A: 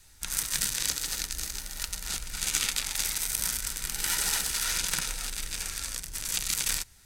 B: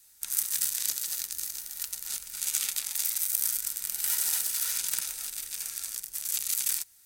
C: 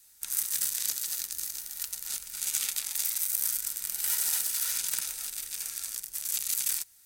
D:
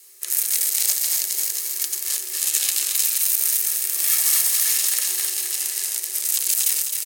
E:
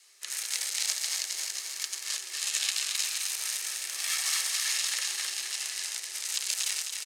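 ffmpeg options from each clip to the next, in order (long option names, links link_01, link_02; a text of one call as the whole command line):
ffmpeg -i in.wav -af "aemphasis=mode=production:type=bsi,volume=-10dB" out.wav
ffmpeg -i in.wav -af "asoftclip=type=tanh:threshold=-8.5dB" out.wav
ffmpeg -i in.wav -filter_complex "[0:a]afreqshift=340,asplit=2[link_01][link_02];[link_02]aecho=0:1:261|522|783|1044|1305|1566|1827|2088:0.447|0.264|0.155|0.0917|0.0541|0.0319|0.0188|0.0111[link_03];[link_01][link_03]amix=inputs=2:normalize=0,alimiter=level_in=11dB:limit=-1dB:release=50:level=0:latency=1,volume=-1dB" out.wav
ffmpeg -i in.wav -af "highpass=770,lowpass=5300,volume=-1dB" out.wav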